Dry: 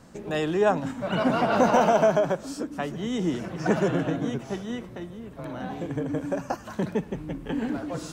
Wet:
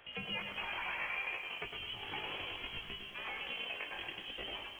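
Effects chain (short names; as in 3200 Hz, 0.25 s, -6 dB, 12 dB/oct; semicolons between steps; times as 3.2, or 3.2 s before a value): ending faded out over 0.59 s; notch 2500 Hz, Q 5; low-pass opened by the level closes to 2000 Hz, open at -16.5 dBFS; differentiator; compressor 5:1, threshold -54 dBFS, peak gain reduction 17.5 dB; time stretch by phase-locked vocoder 0.59×; wow and flutter 18 cents; pitch shift +10.5 st; doubler 20 ms -11.5 dB; split-band echo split 1200 Hz, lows 0.268 s, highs 0.105 s, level -7 dB; inverted band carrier 3600 Hz; lo-fi delay 0.126 s, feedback 55%, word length 13-bit, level -10.5 dB; gain +16.5 dB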